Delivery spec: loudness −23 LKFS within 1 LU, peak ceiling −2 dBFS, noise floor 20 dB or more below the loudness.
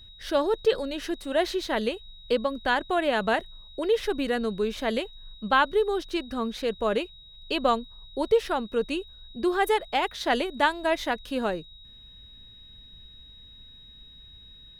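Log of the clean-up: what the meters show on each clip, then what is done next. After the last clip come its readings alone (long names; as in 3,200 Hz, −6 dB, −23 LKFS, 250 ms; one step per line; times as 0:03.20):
interfering tone 3,800 Hz; level of the tone −48 dBFS; integrated loudness −27.0 LKFS; sample peak −9.5 dBFS; target loudness −23.0 LKFS
→ notch filter 3,800 Hz, Q 30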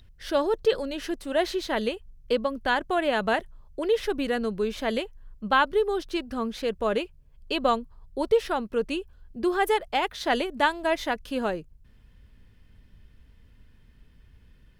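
interfering tone none found; integrated loudness −27.0 LKFS; sample peak −9.5 dBFS; target loudness −23.0 LKFS
→ level +4 dB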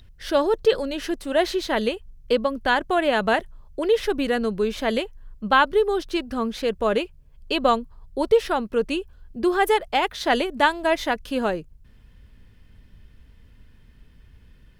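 integrated loudness −23.0 LKFS; sample peak −5.5 dBFS; background noise floor −52 dBFS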